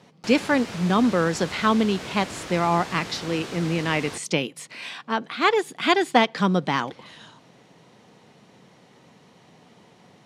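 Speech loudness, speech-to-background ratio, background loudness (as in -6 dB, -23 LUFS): -23.5 LUFS, 12.5 dB, -36.0 LUFS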